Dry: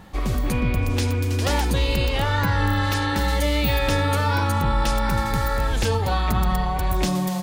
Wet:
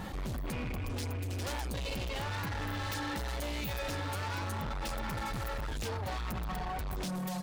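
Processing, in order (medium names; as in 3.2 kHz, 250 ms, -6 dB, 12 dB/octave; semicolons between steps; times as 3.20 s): reverb removal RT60 0.79 s; overload inside the chain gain 28 dB; level flattener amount 70%; trim -7 dB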